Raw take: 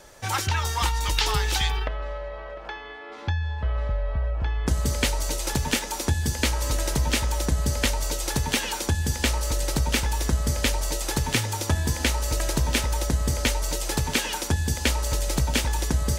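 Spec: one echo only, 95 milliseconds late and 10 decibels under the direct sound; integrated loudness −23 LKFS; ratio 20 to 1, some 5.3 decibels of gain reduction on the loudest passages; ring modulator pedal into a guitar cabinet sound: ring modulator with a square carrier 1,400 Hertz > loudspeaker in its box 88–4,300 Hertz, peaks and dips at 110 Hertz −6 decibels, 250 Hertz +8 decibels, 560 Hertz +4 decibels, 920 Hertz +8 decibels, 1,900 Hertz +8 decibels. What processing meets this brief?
downward compressor 20 to 1, threshold −23 dBFS
single-tap delay 95 ms −10 dB
ring modulator with a square carrier 1,400 Hz
loudspeaker in its box 88–4,300 Hz, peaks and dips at 110 Hz −6 dB, 250 Hz +8 dB, 560 Hz +4 dB, 920 Hz +8 dB, 1,900 Hz +8 dB
level +2 dB

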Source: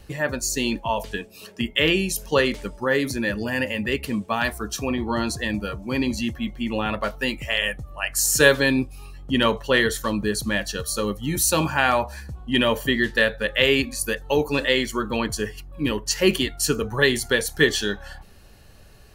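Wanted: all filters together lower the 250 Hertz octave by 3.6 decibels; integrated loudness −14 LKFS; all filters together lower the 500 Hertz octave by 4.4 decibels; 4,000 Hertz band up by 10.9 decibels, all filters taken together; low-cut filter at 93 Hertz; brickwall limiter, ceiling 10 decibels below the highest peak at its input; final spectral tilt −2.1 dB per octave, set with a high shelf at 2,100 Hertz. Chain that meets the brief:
high-pass filter 93 Hz
parametric band 250 Hz −3 dB
parametric band 500 Hz −5 dB
high-shelf EQ 2,100 Hz +8.5 dB
parametric band 4,000 Hz +6.5 dB
level +5 dB
brickwall limiter −0.5 dBFS

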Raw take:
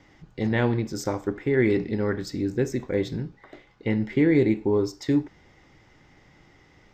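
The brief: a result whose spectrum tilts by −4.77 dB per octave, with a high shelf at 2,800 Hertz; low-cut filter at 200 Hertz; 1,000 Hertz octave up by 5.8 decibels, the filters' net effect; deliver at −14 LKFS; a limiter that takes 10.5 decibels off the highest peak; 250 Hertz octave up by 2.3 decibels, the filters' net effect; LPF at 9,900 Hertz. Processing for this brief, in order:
high-pass filter 200 Hz
low-pass filter 9,900 Hz
parametric band 250 Hz +4 dB
parametric band 1,000 Hz +7.5 dB
high-shelf EQ 2,800 Hz −4 dB
level +14.5 dB
brickwall limiter −3.5 dBFS

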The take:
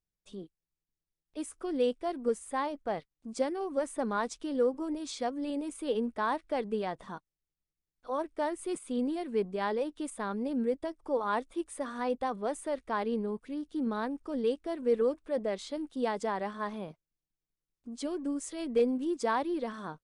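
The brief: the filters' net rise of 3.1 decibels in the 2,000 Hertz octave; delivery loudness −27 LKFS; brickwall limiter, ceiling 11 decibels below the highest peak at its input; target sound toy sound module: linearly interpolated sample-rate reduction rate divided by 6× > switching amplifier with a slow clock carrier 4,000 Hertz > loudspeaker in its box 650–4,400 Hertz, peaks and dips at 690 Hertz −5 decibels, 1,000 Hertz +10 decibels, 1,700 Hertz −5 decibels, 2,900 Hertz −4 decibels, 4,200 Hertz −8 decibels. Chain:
parametric band 2,000 Hz +8 dB
brickwall limiter −27.5 dBFS
linearly interpolated sample-rate reduction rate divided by 6×
switching amplifier with a slow clock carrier 4,000 Hz
loudspeaker in its box 650–4,400 Hz, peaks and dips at 690 Hz −5 dB, 1,000 Hz +10 dB, 1,700 Hz −5 dB, 2,900 Hz −4 dB, 4,200 Hz −8 dB
level +14.5 dB

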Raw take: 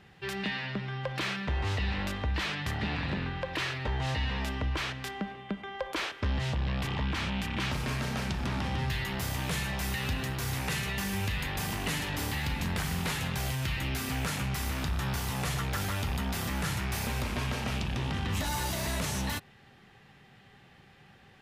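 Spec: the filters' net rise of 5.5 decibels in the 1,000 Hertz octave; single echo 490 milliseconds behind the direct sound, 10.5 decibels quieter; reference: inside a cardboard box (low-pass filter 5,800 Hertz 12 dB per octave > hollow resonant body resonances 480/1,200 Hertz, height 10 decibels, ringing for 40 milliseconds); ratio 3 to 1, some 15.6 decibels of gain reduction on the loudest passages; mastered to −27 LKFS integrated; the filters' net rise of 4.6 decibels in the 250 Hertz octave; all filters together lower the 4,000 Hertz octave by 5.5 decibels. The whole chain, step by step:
parametric band 250 Hz +6 dB
parametric band 1,000 Hz +7 dB
parametric band 4,000 Hz −7.5 dB
downward compressor 3 to 1, threshold −48 dBFS
low-pass filter 5,800 Hz 12 dB per octave
single-tap delay 490 ms −10.5 dB
hollow resonant body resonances 480/1,200 Hz, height 10 dB, ringing for 40 ms
level +17.5 dB

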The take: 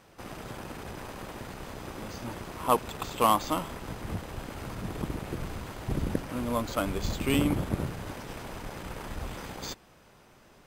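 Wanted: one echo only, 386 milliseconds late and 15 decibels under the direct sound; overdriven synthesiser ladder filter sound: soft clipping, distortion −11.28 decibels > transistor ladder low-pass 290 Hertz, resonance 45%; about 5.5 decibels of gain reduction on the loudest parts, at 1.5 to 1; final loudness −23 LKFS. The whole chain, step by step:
downward compressor 1.5 to 1, threshold −33 dBFS
single-tap delay 386 ms −15 dB
soft clipping −27.5 dBFS
transistor ladder low-pass 290 Hz, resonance 45%
level +24 dB

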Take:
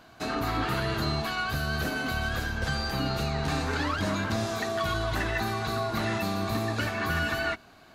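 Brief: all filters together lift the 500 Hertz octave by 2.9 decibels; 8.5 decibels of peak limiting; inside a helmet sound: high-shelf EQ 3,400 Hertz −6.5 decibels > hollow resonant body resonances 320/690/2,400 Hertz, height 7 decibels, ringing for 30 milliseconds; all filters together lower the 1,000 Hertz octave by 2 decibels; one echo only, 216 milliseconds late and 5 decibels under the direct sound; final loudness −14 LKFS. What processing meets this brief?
parametric band 500 Hz +7 dB
parametric band 1,000 Hz −5 dB
brickwall limiter −23 dBFS
high-shelf EQ 3,400 Hz −6.5 dB
single-tap delay 216 ms −5 dB
hollow resonant body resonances 320/690/2,400 Hz, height 7 dB, ringing for 30 ms
level +15 dB

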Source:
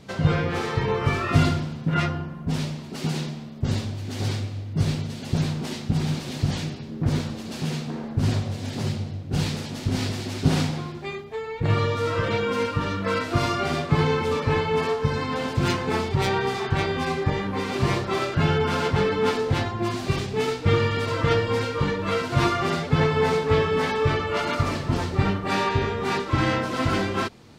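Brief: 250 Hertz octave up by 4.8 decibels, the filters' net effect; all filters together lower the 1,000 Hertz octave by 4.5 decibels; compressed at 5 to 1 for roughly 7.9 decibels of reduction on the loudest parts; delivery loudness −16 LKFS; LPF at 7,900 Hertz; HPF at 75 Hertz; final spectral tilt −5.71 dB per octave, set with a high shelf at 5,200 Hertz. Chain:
high-pass filter 75 Hz
low-pass filter 7,900 Hz
parametric band 250 Hz +7 dB
parametric band 1,000 Hz −6.5 dB
high-shelf EQ 5,200 Hz +4 dB
downward compressor 5 to 1, threshold −21 dBFS
level +10.5 dB

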